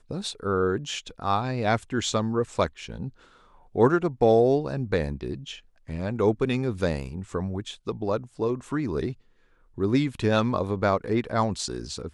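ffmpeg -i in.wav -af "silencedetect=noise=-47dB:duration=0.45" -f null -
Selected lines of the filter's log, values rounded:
silence_start: 9.14
silence_end: 9.77 | silence_duration: 0.63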